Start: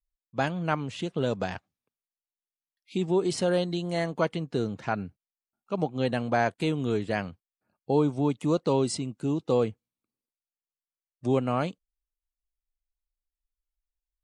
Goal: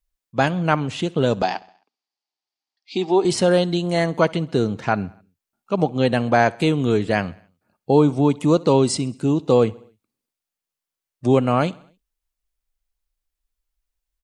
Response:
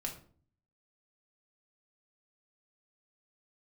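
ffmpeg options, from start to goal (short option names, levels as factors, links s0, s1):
-filter_complex "[0:a]asettb=1/sr,asplit=3[s0][s1][s2];[s0]atrim=end=1.424[s3];[s1]atrim=start=1.42:end=3.25,asetpts=PTS-STARTPTS,afade=t=in:d=0.004:c=qsin,afade=t=out:st=1.826:d=0.004:c=qsin,highpass=f=240:w=0.5412,highpass=f=240:w=1.3066,equalizer=f=510:t=q:w=4:g=-8,equalizer=f=790:t=q:w=4:g=9,equalizer=f=1500:t=q:w=4:g=-4,equalizer=f=4700:t=q:w=4:g=9,lowpass=f=6300:w=0.5412,lowpass=f=6300:w=1.3066[s4];[s2]atrim=start=3.246[s5];[s3][s4]acrossfade=d=0.004:c1=hsin:c2=qsin[s6];[s6][s5]acrossfade=d=0.004:c1=qsin:c2=hsin,aecho=1:1:66|132|198|264:0.0668|0.0381|0.0217|0.0124,volume=2.66"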